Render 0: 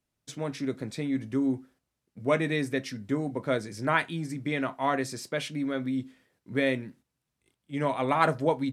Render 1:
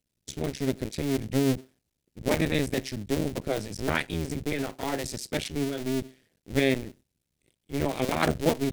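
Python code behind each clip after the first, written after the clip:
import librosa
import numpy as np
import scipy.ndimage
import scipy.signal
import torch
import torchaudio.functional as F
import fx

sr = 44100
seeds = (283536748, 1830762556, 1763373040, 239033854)

y = fx.cycle_switch(x, sr, every=2, mode='muted')
y = fx.peak_eq(y, sr, hz=1100.0, db=-12.0, octaves=1.4)
y = y * librosa.db_to_amplitude(6.5)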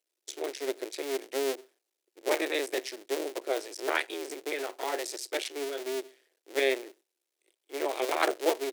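y = scipy.signal.sosfilt(scipy.signal.ellip(4, 1.0, 50, 350.0, 'highpass', fs=sr, output='sos'), x)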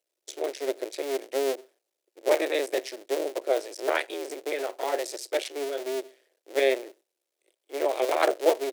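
y = fx.peak_eq(x, sr, hz=580.0, db=8.0, octaves=0.75)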